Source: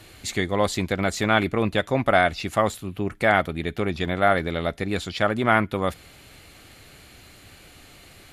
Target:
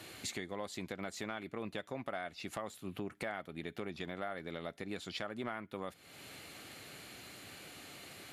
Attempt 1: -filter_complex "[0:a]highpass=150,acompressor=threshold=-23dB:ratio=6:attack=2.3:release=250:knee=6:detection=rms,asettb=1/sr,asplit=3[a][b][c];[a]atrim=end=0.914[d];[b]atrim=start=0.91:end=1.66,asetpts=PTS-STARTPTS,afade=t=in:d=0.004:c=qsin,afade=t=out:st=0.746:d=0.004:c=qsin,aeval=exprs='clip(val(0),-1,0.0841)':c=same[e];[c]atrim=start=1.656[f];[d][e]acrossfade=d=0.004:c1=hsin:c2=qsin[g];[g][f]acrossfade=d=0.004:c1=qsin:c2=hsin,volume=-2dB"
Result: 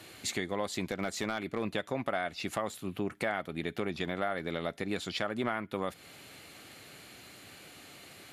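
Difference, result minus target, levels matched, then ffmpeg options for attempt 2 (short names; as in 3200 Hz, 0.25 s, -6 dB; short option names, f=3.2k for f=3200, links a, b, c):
compressor: peak gain reduction -8 dB
-filter_complex "[0:a]highpass=150,acompressor=threshold=-32.5dB:ratio=6:attack=2.3:release=250:knee=6:detection=rms,asettb=1/sr,asplit=3[a][b][c];[a]atrim=end=0.914[d];[b]atrim=start=0.91:end=1.66,asetpts=PTS-STARTPTS,afade=t=in:d=0.004:c=qsin,afade=t=out:st=0.746:d=0.004:c=qsin,aeval=exprs='clip(val(0),-1,0.0841)':c=same[e];[c]atrim=start=1.656[f];[d][e]acrossfade=d=0.004:c1=hsin:c2=qsin[g];[g][f]acrossfade=d=0.004:c1=qsin:c2=hsin,volume=-2dB"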